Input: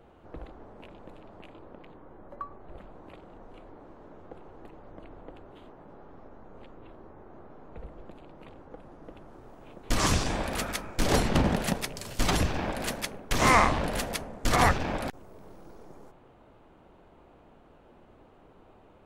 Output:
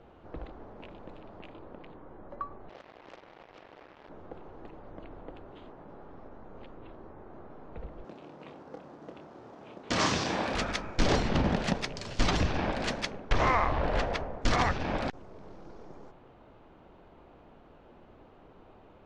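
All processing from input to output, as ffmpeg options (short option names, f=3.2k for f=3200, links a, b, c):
-filter_complex "[0:a]asettb=1/sr,asplit=3[a][b][c];[a]atrim=end=2.694[d];[b]atrim=start=2.69:end=4.09,asetpts=PTS-STARTPTS,afade=t=in:d=0.004:c=qsin,afade=t=out:st=1.396:d=0.004:c=qsin,highpass=390,lowpass=3k,acrusher=bits=7:mix=0:aa=0.5[e];[c]atrim=start=4.086[f];[d][e]acrossfade=d=0.004:c1=hsin:c2=qsin[g];[g][f]acrossfade=d=0.004:c1=qsin:c2=hsin,asettb=1/sr,asplit=3[h][i][j];[h]atrim=end=8.044[k];[i]atrim=start=8.04:end=10.53,asetpts=PTS-STARTPTS,afade=t=in:d=0.004:c=qsin,afade=t=out:st=2.486:d=0.004:c=qsin,highpass=150,asplit=2[l][m];[m]adelay=27,volume=-6.5dB[n];[l][n]amix=inputs=2:normalize=0,atrim=end_sample=109809,acrusher=bits=5:mode=log:mix=0:aa=0.000001[o];[j]atrim=start=10.526[p];[k][o]acrossfade=d=0.004:c1=hsin:c2=qsin[q];[q][p]acrossfade=d=0.004:c1=qsin:c2=hsin,asettb=1/sr,asplit=3[r][s][t];[r]atrim=end=13.304[u];[s]atrim=start=13.3:end=14.42,asetpts=PTS-STARTPTS,afade=t=in:d=0.004:c=qsin,afade=t=out:st=1.116:d=0.004:c=qsin,lowpass=f=1.3k:p=1,equalizer=f=210:w=1.1:g=-9,acontrast=30[v];[t]atrim=start=14.416[w];[u][v]acrossfade=d=0.004:c1=hsin:c2=qsin[x];[x][w]acrossfade=d=0.004:c1=qsin:c2=hsin,lowpass=f=6k:w=0.5412,lowpass=f=6k:w=1.3066,alimiter=limit=-16.5dB:level=0:latency=1:release=329,volume=1dB"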